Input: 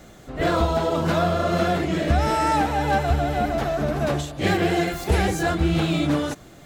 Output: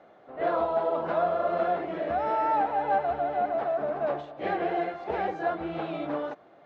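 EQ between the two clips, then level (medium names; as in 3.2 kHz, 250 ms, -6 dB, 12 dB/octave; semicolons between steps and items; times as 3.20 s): band-pass filter 680 Hz, Q 1.3; distance through air 240 m; tilt EQ +2 dB/octave; 0.0 dB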